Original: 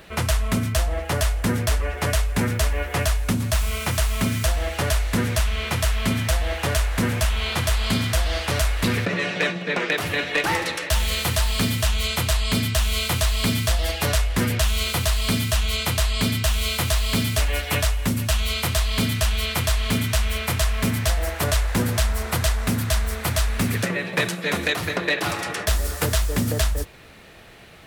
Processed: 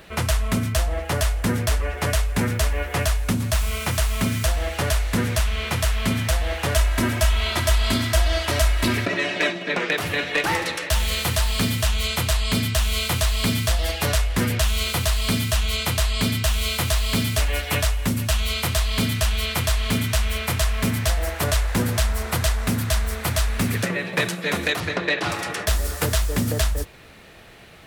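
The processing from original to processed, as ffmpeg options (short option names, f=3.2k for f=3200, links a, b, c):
-filter_complex "[0:a]asettb=1/sr,asplit=3[a][b][c];[a]atrim=end=6.754[d];[b]atrim=start=6.75:end=9.72,asetpts=PTS-STARTPTS,afade=t=in:d=0.004:c=qsin,afade=t=out:st=2.966:d=0.004:c=qsin,aecho=1:1:3.1:0.65,atrim=end_sample=130977[e];[c]atrim=start=9.716[f];[d][e]acrossfade=d=0.004:c1=hsin:c2=qsin[g];[g][f]acrossfade=d=0.004:c1=qsin:c2=hsin,asettb=1/sr,asplit=3[h][i][j];[h]atrim=end=24.804[k];[i]atrim=start=24.8:end=25.32,asetpts=PTS-STARTPTS,afade=t=in:d=0.004:c=qsin,afade=t=out:st=0.516:d=0.004:c=qsin,lowpass=6.7k[l];[j]atrim=start=25.316[m];[k][l]acrossfade=d=0.004:c1=hsin:c2=qsin[n];[n][m]acrossfade=d=0.004:c1=qsin:c2=hsin"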